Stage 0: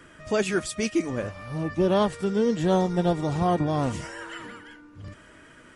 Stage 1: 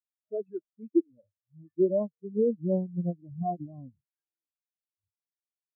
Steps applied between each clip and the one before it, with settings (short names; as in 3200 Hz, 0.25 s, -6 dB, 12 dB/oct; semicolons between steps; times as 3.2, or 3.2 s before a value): spectral expander 4:1; gain -1.5 dB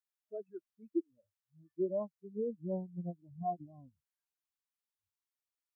graphic EQ 125/250/500/1000 Hz -9/-8/-9/+4 dB; gain -1 dB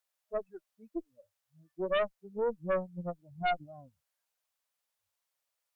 resonant low shelf 440 Hz -6.5 dB, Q 3; added harmonics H 2 -7 dB, 5 -10 dB, 6 -16 dB, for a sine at -22.5 dBFS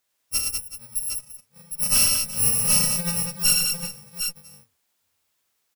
FFT order left unsorted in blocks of 128 samples; on a send: tapped delay 42/76/107/195/374/757 ms -8.5/-7.5/-4.5/-5/-15.5/-7 dB; on the sum: gain +9 dB